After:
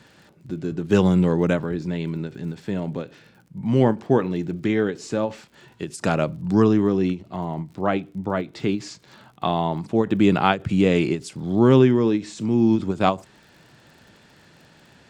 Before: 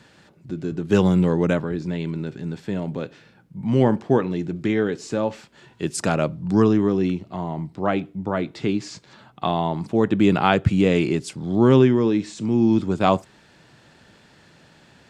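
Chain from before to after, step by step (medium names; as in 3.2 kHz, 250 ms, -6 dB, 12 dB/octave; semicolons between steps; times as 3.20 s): crackle 48 per s -43 dBFS; endings held to a fixed fall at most 240 dB/s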